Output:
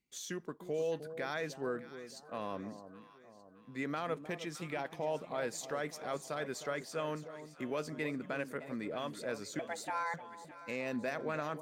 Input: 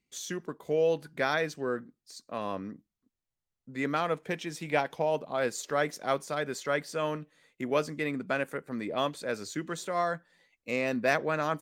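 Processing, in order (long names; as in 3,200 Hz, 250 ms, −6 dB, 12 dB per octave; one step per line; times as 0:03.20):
brickwall limiter −22 dBFS, peak gain reduction 10 dB
0:09.59–0:10.14: frequency shifter +330 Hz
delay that swaps between a low-pass and a high-pass 307 ms, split 990 Hz, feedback 67%, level −11 dB
level −5 dB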